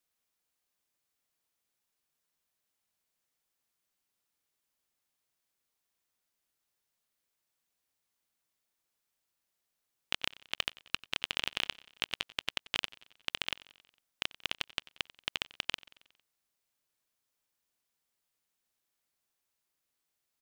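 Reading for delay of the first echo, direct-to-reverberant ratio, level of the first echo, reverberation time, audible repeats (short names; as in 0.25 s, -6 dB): 91 ms, none, -21.0 dB, none, 3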